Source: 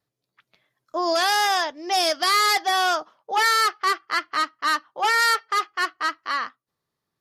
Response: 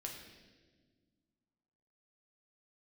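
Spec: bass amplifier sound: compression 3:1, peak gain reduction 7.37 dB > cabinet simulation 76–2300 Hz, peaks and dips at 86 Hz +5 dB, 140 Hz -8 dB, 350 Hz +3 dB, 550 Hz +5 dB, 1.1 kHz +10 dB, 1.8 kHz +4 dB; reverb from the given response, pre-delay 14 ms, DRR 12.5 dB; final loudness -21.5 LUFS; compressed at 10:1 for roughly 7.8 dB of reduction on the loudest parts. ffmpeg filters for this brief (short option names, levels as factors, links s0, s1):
-filter_complex "[0:a]acompressor=threshold=0.0562:ratio=10,asplit=2[s0][s1];[1:a]atrim=start_sample=2205,adelay=14[s2];[s1][s2]afir=irnorm=-1:irlink=0,volume=0.299[s3];[s0][s3]amix=inputs=2:normalize=0,acompressor=threshold=0.0224:ratio=3,highpass=f=76:w=0.5412,highpass=f=76:w=1.3066,equalizer=f=86:t=q:w=4:g=5,equalizer=f=140:t=q:w=4:g=-8,equalizer=f=350:t=q:w=4:g=3,equalizer=f=550:t=q:w=4:g=5,equalizer=f=1100:t=q:w=4:g=10,equalizer=f=1800:t=q:w=4:g=4,lowpass=f=2300:w=0.5412,lowpass=f=2300:w=1.3066,volume=2.82"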